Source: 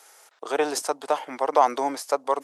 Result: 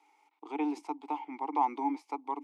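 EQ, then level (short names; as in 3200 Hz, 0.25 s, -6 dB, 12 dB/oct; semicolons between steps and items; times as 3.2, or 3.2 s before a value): vowel filter u; +3.0 dB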